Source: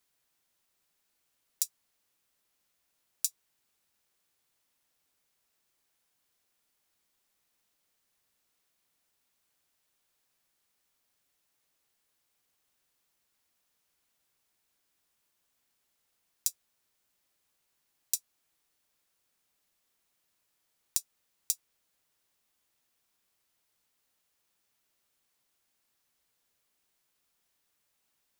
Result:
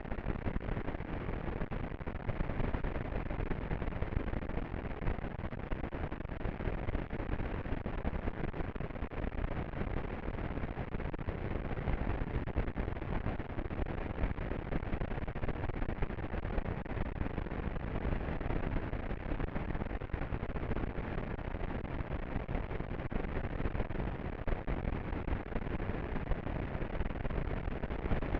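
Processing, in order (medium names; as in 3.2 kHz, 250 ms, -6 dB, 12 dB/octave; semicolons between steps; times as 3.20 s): one-bit comparator; word length cut 6-bit, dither triangular; peaking EQ 1.2 kHz -5.5 dB 0.84 oct; delay 203 ms -9.5 dB; gain riding 2 s; tilt EQ -4.5 dB/octave; half-wave rectifier; low-pass 2.2 kHz 24 dB/octave; Chebyshev shaper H 8 -26 dB, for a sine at -23.5 dBFS; trim +8 dB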